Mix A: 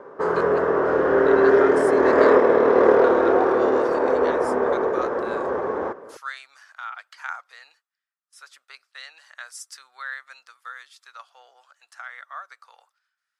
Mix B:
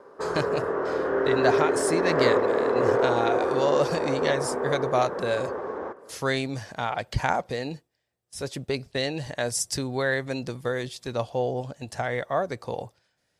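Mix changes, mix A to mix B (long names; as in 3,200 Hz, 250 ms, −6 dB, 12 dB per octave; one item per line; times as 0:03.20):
speech: remove four-pole ladder high-pass 1,200 Hz, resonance 70%
background −7.0 dB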